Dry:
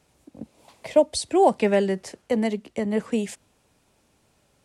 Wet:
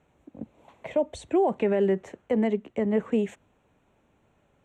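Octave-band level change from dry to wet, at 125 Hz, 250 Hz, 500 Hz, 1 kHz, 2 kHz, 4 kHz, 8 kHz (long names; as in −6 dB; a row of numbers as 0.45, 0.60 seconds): −1.5 dB, −1.5 dB, −3.0 dB, −7.5 dB, −5.5 dB, below −10 dB, below −15 dB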